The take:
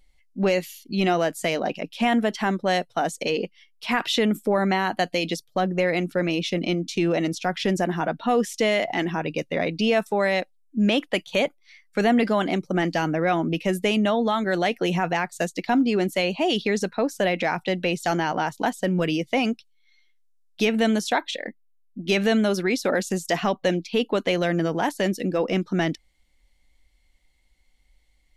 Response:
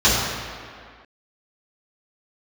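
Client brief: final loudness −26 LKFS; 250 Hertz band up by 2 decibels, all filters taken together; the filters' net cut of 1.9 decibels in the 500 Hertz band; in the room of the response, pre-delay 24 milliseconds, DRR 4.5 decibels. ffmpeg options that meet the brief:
-filter_complex "[0:a]equalizer=frequency=250:width_type=o:gain=3.5,equalizer=frequency=500:width_type=o:gain=-3.5,asplit=2[link_01][link_02];[1:a]atrim=start_sample=2205,adelay=24[link_03];[link_02][link_03]afir=irnorm=-1:irlink=0,volume=-27.5dB[link_04];[link_01][link_04]amix=inputs=2:normalize=0,volume=-4.5dB"

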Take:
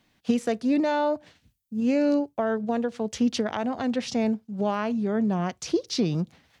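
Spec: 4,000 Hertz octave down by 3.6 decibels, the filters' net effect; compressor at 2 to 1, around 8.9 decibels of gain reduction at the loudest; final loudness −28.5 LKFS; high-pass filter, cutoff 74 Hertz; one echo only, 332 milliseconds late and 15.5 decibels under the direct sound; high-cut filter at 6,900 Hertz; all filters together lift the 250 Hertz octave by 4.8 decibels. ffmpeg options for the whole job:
ffmpeg -i in.wav -af "highpass=74,lowpass=6900,equalizer=frequency=250:width_type=o:gain=5.5,equalizer=frequency=4000:width_type=o:gain=-4,acompressor=threshold=-30dB:ratio=2,aecho=1:1:332:0.168,volume=1dB" out.wav

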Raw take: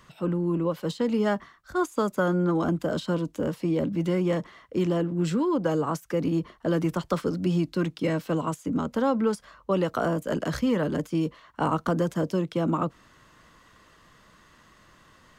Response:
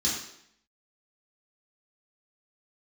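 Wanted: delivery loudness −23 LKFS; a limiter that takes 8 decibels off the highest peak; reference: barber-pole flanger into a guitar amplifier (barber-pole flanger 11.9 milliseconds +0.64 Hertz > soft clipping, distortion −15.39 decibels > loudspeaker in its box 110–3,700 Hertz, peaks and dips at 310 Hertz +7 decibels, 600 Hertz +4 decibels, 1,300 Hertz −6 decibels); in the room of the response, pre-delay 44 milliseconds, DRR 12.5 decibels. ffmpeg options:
-filter_complex "[0:a]alimiter=limit=-20.5dB:level=0:latency=1,asplit=2[link_01][link_02];[1:a]atrim=start_sample=2205,adelay=44[link_03];[link_02][link_03]afir=irnorm=-1:irlink=0,volume=-20.5dB[link_04];[link_01][link_04]amix=inputs=2:normalize=0,asplit=2[link_05][link_06];[link_06]adelay=11.9,afreqshift=0.64[link_07];[link_05][link_07]amix=inputs=2:normalize=1,asoftclip=threshold=-26.5dB,highpass=110,equalizer=frequency=310:width_type=q:width=4:gain=7,equalizer=frequency=600:width_type=q:width=4:gain=4,equalizer=frequency=1300:width_type=q:width=4:gain=-6,lowpass=frequency=3700:width=0.5412,lowpass=frequency=3700:width=1.3066,volume=9dB"

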